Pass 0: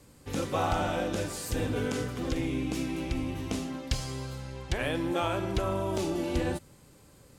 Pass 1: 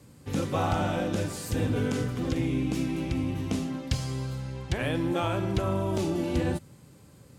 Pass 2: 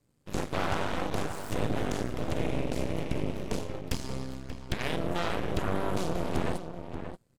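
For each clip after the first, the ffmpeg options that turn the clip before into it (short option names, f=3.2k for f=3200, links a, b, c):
-af "highpass=94,bass=f=250:g=8,treble=f=4k:g=-1"
-filter_complex "[0:a]aeval=exprs='0.211*(cos(1*acos(clip(val(0)/0.211,-1,1)))-cos(1*PI/2))+0.075*(cos(6*acos(clip(val(0)/0.211,-1,1)))-cos(6*PI/2))+0.0237*(cos(7*acos(clip(val(0)/0.211,-1,1)))-cos(7*PI/2))':c=same,asplit=2[a][b];[b]adelay=583.1,volume=-8dB,highshelf=f=4k:g=-13.1[c];[a][c]amix=inputs=2:normalize=0,volume=-6.5dB"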